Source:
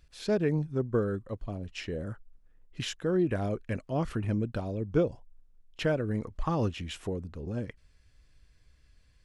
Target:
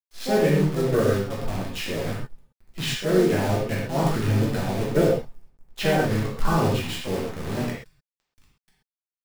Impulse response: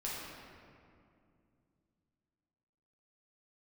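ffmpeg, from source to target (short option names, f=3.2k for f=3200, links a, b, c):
-filter_complex "[0:a]agate=range=-33dB:threshold=-53dB:ratio=3:detection=peak,equalizer=f=2.6k:t=o:w=2.9:g=2.5,asplit=2[a][b];[b]asetrate=55563,aresample=44100,atempo=0.793701,volume=-6dB[c];[a][c]amix=inputs=2:normalize=0,acrossover=split=110|4600[d][e][f];[d]aeval=exprs='sgn(val(0))*max(abs(val(0))-0.00112,0)':c=same[g];[g][e][f]amix=inputs=3:normalize=0,acrusher=bits=7:dc=4:mix=0:aa=0.000001[h];[1:a]atrim=start_sample=2205,atrim=end_sample=6174[i];[h][i]afir=irnorm=-1:irlink=0,volume=5.5dB"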